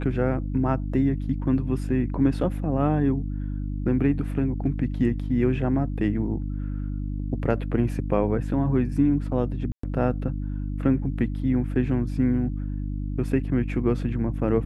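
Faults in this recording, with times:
mains hum 50 Hz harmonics 6 −29 dBFS
0:09.72–0:09.83: drop-out 114 ms

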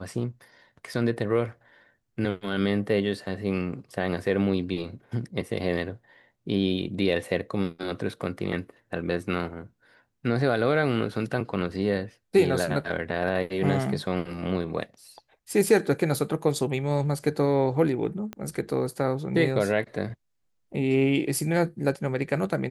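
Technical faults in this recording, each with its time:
0:18.33: click −21 dBFS

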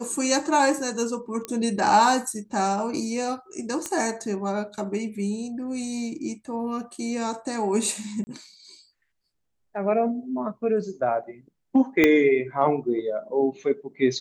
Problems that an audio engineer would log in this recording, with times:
0:01.45: click −16 dBFS
0:03.86: click −14 dBFS
0:08.24–0:08.27: drop-out 30 ms
0:12.04: click −5 dBFS

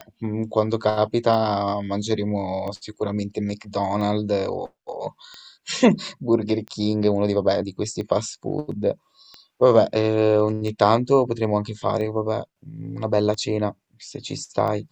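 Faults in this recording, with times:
scratch tick 45 rpm −21 dBFS

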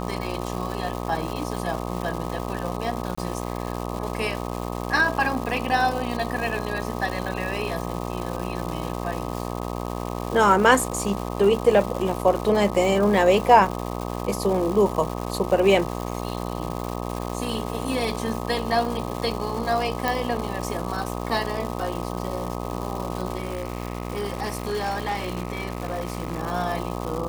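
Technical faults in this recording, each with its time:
mains buzz 60 Hz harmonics 21 −30 dBFS
surface crackle 420 per second −29 dBFS
0:03.15–0:03.17: drop-out 25 ms
0:20.08: click
0:23.37–0:26.40: clipping −22 dBFS

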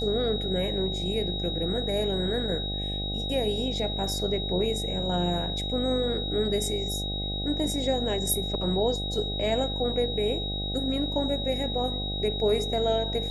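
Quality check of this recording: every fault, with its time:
mains buzz 50 Hz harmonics 16 −33 dBFS
whistle 3,800 Hz −32 dBFS

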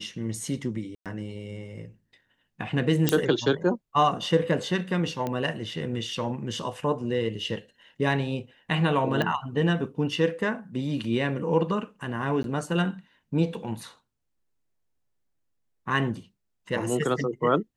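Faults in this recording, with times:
0:00.95–0:01.06: drop-out 107 ms
0:03.09: click −5 dBFS
0:05.27: click −17 dBFS
0:09.22: click −14 dBFS
0:12.43–0:12.44: drop-out

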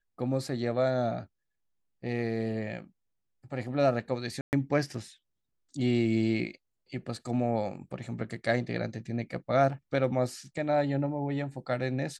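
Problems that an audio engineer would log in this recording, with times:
0:04.41–0:04.53: drop-out 119 ms

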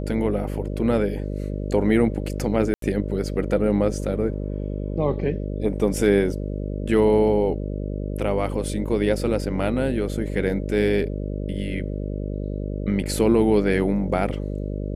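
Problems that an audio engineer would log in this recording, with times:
mains buzz 50 Hz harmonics 12 −28 dBFS
0:02.74–0:02.82: drop-out 83 ms

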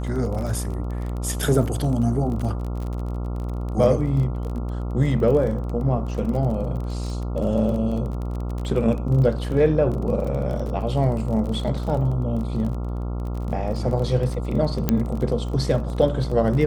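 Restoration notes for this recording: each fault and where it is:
mains buzz 60 Hz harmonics 23 −27 dBFS
surface crackle 26 per second −29 dBFS
0:14.89: click −6 dBFS

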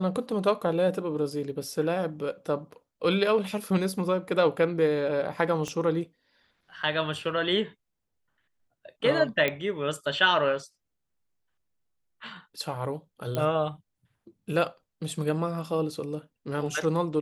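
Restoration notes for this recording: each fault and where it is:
0:05.68: click −21 dBFS
0:09.48: click −13 dBFS
0:13.35: click −16 dBFS

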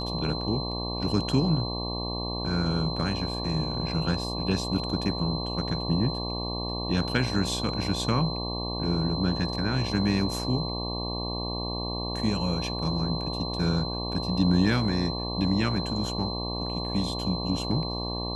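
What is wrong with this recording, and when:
mains buzz 60 Hz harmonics 19 −33 dBFS
whistle 4,100 Hz −34 dBFS

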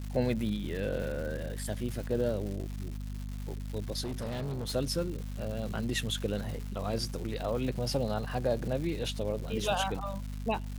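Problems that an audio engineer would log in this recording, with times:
surface crackle 330 per second −38 dBFS
mains hum 50 Hz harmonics 5 −38 dBFS
0:04.02–0:04.76: clipping −32 dBFS

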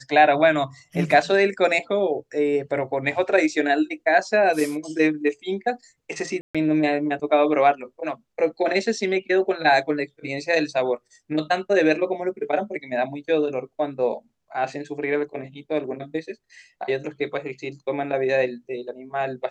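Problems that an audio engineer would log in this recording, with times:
0:06.41–0:06.55: drop-out 136 ms

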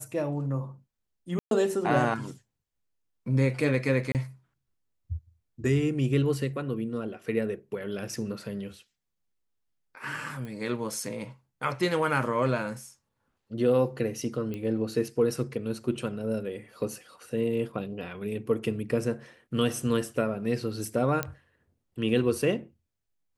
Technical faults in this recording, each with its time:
0:01.39–0:01.51: drop-out 122 ms
0:04.12–0:04.15: drop-out 28 ms
0:10.45: click −28 dBFS
0:14.54: click −23 dBFS
0:21.23: click −13 dBFS

